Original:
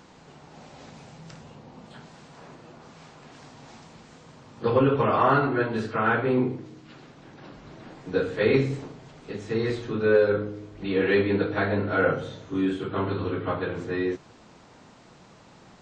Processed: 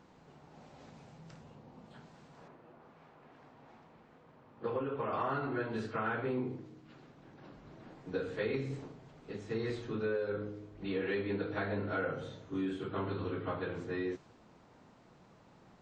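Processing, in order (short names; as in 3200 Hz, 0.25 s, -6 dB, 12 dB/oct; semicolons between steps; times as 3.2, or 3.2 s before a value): compressor 6:1, threshold -23 dBFS, peak gain reduction 8.5 dB; 2.48–5.13 tone controls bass -6 dB, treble -15 dB; mismatched tape noise reduction decoder only; gain -8 dB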